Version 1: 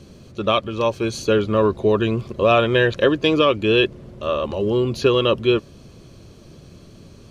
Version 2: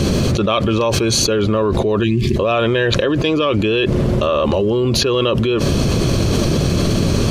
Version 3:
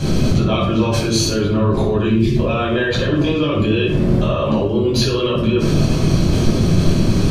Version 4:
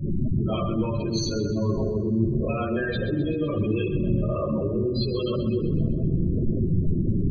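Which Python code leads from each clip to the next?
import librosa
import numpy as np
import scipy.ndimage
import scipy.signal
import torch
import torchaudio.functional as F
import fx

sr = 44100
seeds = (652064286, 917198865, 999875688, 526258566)

y1 = fx.spec_box(x, sr, start_s=2.04, length_s=0.32, low_hz=410.0, high_hz=1600.0, gain_db=-23)
y1 = fx.env_flatten(y1, sr, amount_pct=100)
y1 = y1 * 10.0 ** (-3.5 / 20.0)
y2 = fx.room_shoebox(y1, sr, seeds[0], volume_m3=880.0, walls='furnished', distance_m=8.2)
y2 = y2 * 10.0 ** (-12.0 / 20.0)
y3 = fx.spec_gate(y2, sr, threshold_db=-15, keep='strong')
y3 = fx.echo_split(y3, sr, split_hz=520.0, low_ms=535, high_ms=129, feedback_pct=52, wet_db=-11.0)
y3 = y3 * 10.0 ** (-8.5 / 20.0)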